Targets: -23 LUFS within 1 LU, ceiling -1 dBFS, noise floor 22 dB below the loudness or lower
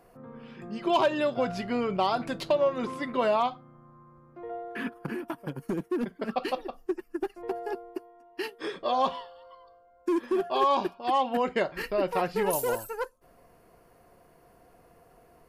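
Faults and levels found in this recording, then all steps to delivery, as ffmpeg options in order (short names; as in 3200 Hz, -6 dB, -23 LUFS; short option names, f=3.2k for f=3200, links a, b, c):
loudness -29.5 LUFS; peak -15.5 dBFS; loudness target -23.0 LUFS
-> -af "volume=6.5dB"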